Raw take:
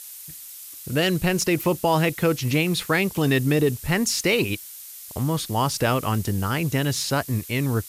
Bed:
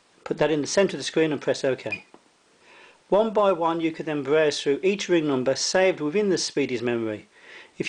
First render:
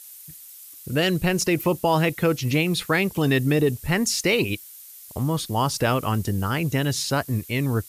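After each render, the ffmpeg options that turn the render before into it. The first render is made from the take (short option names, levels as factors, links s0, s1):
-af "afftdn=nr=6:nf=-41"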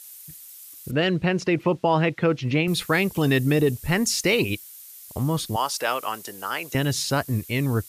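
-filter_complex "[0:a]asettb=1/sr,asplit=3[s0][s1][s2];[s0]atrim=end=0.914[s3];[s1]atrim=start=0.91:end=2.68,asetpts=PTS-STARTPTS,afade=t=in:d=0.004:c=qsin,afade=t=out:st=1.766:d=0.004:c=qsin,highpass=100,lowpass=3200[s4];[s2]atrim=start=2.676[s5];[s3][s4]acrossfade=d=0.004:c1=hsin:c2=qsin[s6];[s6][s5]acrossfade=d=0.004:c1=qsin:c2=hsin,asettb=1/sr,asplit=3[s7][s8][s9];[s7]atrim=end=5.564[s10];[s8]atrim=start=5.56:end=6.75,asetpts=PTS-STARTPTS,afade=t=in:d=0.004:c=qsin,afade=t=out:st=1.186:d=0.004:c=qsin,highpass=590[s11];[s9]atrim=start=6.746[s12];[s10][s11]acrossfade=d=0.004:c1=hsin:c2=qsin[s13];[s13][s12]acrossfade=d=0.004:c1=qsin:c2=hsin"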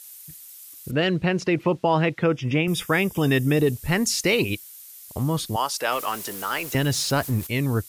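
-filter_complex "[0:a]asettb=1/sr,asplit=3[s0][s1][s2];[s0]atrim=end=2.224[s3];[s1]atrim=start=2.22:end=3.57,asetpts=PTS-STARTPTS,afade=t=in:d=0.004:c=qsin,afade=t=out:st=1.346:d=0.004:c=qsin,asuperstop=centerf=4200:order=12:qfactor=5.1[s4];[s2]atrim=start=3.566[s5];[s3][s4]acrossfade=d=0.004:c1=hsin:c2=qsin[s6];[s6][s5]acrossfade=d=0.004:c1=qsin:c2=hsin,asettb=1/sr,asplit=3[s7][s8][s9];[s7]atrim=end=5.924[s10];[s8]atrim=start=5.92:end=7.47,asetpts=PTS-STARTPTS,afade=t=in:d=0.004:c=qsin,afade=t=out:st=1.546:d=0.004:c=qsin,aeval=exprs='val(0)+0.5*0.0224*sgn(val(0))':c=same[s11];[s9]atrim=start=7.466[s12];[s10][s11]acrossfade=d=0.004:c1=hsin:c2=qsin[s13];[s13][s12]acrossfade=d=0.004:c1=qsin:c2=hsin"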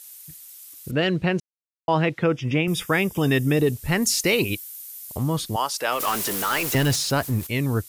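-filter_complex "[0:a]asettb=1/sr,asplit=3[s0][s1][s2];[s0]atrim=end=4.024[s3];[s1]atrim=start=4.02:end=5.17,asetpts=PTS-STARTPTS,afade=t=in:d=0.004:c=qsin,afade=t=out:st=1.146:d=0.004:c=qsin,highshelf=f=9900:g=8[s4];[s2]atrim=start=5.166[s5];[s3][s4]acrossfade=d=0.004:c1=hsin:c2=qsin[s6];[s6][s5]acrossfade=d=0.004:c1=qsin:c2=hsin,asettb=1/sr,asplit=3[s7][s8][s9];[s7]atrim=end=6.004[s10];[s8]atrim=start=6:end=6.96,asetpts=PTS-STARTPTS,afade=t=in:d=0.004:c=qsin,afade=t=out:st=0.956:d=0.004:c=qsin,aeval=exprs='val(0)+0.5*0.0531*sgn(val(0))':c=same[s11];[s9]atrim=start=6.956[s12];[s10][s11]acrossfade=d=0.004:c1=hsin:c2=qsin[s13];[s13][s12]acrossfade=d=0.004:c1=qsin:c2=hsin,asplit=3[s14][s15][s16];[s14]atrim=end=1.4,asetpts=PTS-STARTPTS,afade=t=out:st=1.396:d=0.004:c=hsin[s17];[s15]atrim=start=1.4:end=1.88,asetpts=PTS-STARTPTS,volume=0[s18];[s16]atrim=start=1.88,asetpts=PTS-STARTPTS,afade=t=in:d=0.004:c=hsin[s19];[s17][s18][s19]concat=n=3:v=0:a=1"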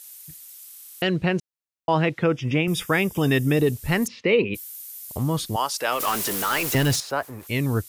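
-filter_complex "[0:a]asplit=3[s0][s1][s2];[s0]afade=t=out:st=4.06:d=0.02[s3];[s1]highpass=f=110:w=0.5412,highpass=f=110:w=1.3066,equalizer=f=140:t=q:w=4:g=-10,equalizer=f=210:t=q:w=4:g=4,equalizer=f=300:t=q:w=4:g=-5,equalizer=f=460:t=q:w=4:g=7,equalizer=f=750:t=q:w=4:g=-8,equalizer=f=1500:t=q:w=4:g=-8,lowpass=f=2800:w=0.5412,lowpass=f=2800:w=1.3066,afade=t=in:st=4.06:d=0.02,afade=t=out:st=4.54:d=0.02[s4];[s2]afade=t=in:st=4.54:d=0.02[s5];[s3][s4][s5]amix=inputs=3:normalize=0,asettb=1/sr,asplit=3[s6][s7][s8];[s6]atrim=end=7.004[s9];[s7]atrim=start=7:end=7.47,asetpts=PTS-STARTPTS,afade=t=in:d=0.004:c=qsin,afade=t=out:st=0.466:d=0.004:c=qsin,acrossover=split=400 2000:gain=0.141 1 0.251[s10][s11][s12];[s10][s11][s12]amix=inputs=3:normalize=0[s13];[s8]atrim=start=7.466[s14];[s9][s13]acrossfade=d=0.004:c1=hsin:c2=qsin[s15];[s15][s14]acrossfade=d=0.004:c1=qsin:c2=hsin,asplit=7[s16][s17][s18][s19][s20][s21][s22];[s16]atrim=end=0.722[s23];[s17]atrim=start=0.658:end=0.722[s24];[s18]atrim=start=0.658:end=0.722[s25];[s19]atrim=start=0.658:end=0.722[s26];[s20]atrim=start=0.658:end=0.722[s27];[s21]atrim=start=0.658:end=0.722[s28];[s22]atrim=start=1.018[s29];[s23][s24]acrossfade=d=0.004:c1=hsin:c2=hsin[s30];[s30][s25]acrossfade=d=0.004:c1=hsin:c2=hsin[s31];[s31][s26]acrossfade=d=0.004:c1=hsin:c2=hsin[s32];[s32][s27]acrossfade=d=0.004:c1=hsin:c2=hsin[s33];[s33][s28]acrossfade=d=0.004:c1=hsin:c2=hsin[s34];[s34][s29]acrossfade=d=0.004:c1=hsin:c2=hsin"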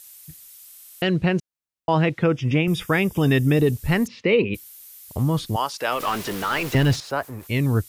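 -filter_complex "[0:a]acrossover=split=4800[s0][s1];[s1]acompressor=threshold=0.01:ratio=4:attack=1:release=60[s2];[s0][s2]amix=inputs=2:normalize=0,lowshelf=f=190:g=5.5"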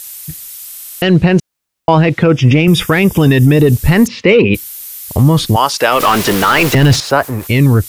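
-filter_complex "[0:a]asplit=2[s0][s1];[s1]acontrast=84,volume=1.26[s2];[s0][s2]amix=inputs=2:normalize=0,alimiter=level_in=1.58:limit=0.891:release=50:level=0:latency=1"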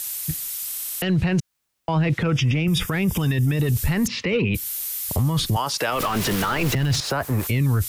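-filter_complex "[0:a]acrossover=split=180|840[s0][s1][s2];[s0]acompressor=threshold=0.282:ratio=4[s3];[s1]acompressor=threshold=0.0631:ratio=4[s4];[s2]acompressor=threshold=0.0794:ratio=4[s5];[s3][s4][s5]amix=inputs=3:normalize=0,alimiter=limit=0.2:level=0:latency=1:release=11"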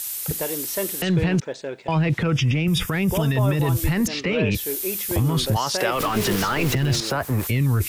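-filter_complex "[1:a]volume=0.422[s0];[0:a][s0]amix=inputs=2:normalize=0"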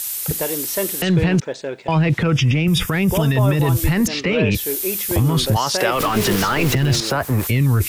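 -af "volume=1.58"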